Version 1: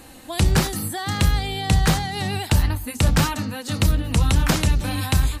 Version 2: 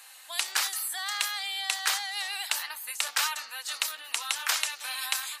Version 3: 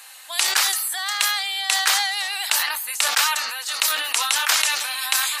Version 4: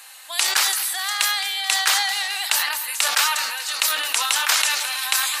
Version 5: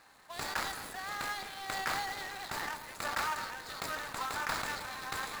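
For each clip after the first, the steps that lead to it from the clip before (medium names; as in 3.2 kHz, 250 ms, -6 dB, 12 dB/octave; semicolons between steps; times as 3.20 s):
Bessel high-pass 1.4 kHz, order 4; trim -1 dB
decay stretcher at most 37 dB/s; trim +7 dB
two-band feedback delay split 1.5 kHz, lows 109 ms, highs 216 ms, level -12 dB
median filter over 15 samples; trim -8 dB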